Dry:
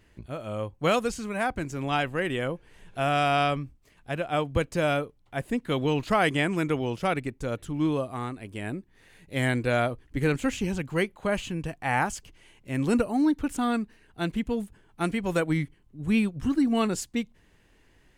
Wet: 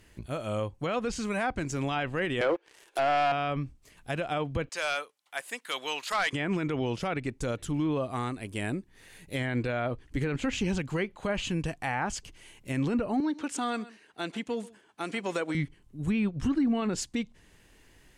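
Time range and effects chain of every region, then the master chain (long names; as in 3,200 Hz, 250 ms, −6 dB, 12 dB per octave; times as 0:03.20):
0:02.41–0:03.32: elliptic high-pass filter 320 Hz + leveller curve on the samples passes 3
0:04.69–0:06.33: high-pass filter 970 Hz + hard clipping −22.5 dBFS
0:13.20–0:15.55: single-tap delay 131 ms −22.5 dB + downward compressor 3 to 1, threshold −25 dBFS + band-pass filter 320–7,400 Hz
whole clip: treble cut that deepens with the level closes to 2,600 Hz, closed at −20.5 dBFS; high-shelf EQ 4,700 Hz +9 dB; brickwall limiter −21.5 dBFS; level +1.5 dB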